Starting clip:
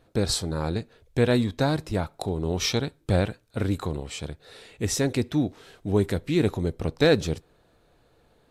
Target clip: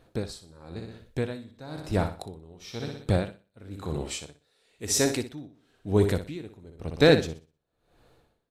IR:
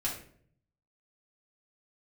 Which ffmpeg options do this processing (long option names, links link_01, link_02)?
-filter_complex "[0:a]asettb=1/sr,asplit=3[link_01][link_02][link_03];[link_01]atrim=end=4.054[link_04];[link_02]atrim=start=4.05:end=5.26,asetpts=PTS-STARTPTS,afade=type=in:duration=0.004:curve=qsin,afade=type=out:start_time=1.206:duration=0.004:curve=qsin,bass=frequency=250:gain=-6,treble=frequency=4000:gain=5[link_05];[link_03]atrim=start=5.256[link_06];[link_04][link_05]acrossfade=duration=0.004:curve1=hsin:curve2=qsin[link_07];[link_07][link_06]acrossfade=duration=0.004:curve1=qsin:curve2=hsin,aecho=1:1:61|122|183|244|305:0.376|0.162|0.0695|0.0299|0.0128,aeval=exprs='val(0)*pow(10,-25*(0.5-0.5*cos(2*PI*0.99*n/s))/20)':channel_layout=same,volume=1.5dB"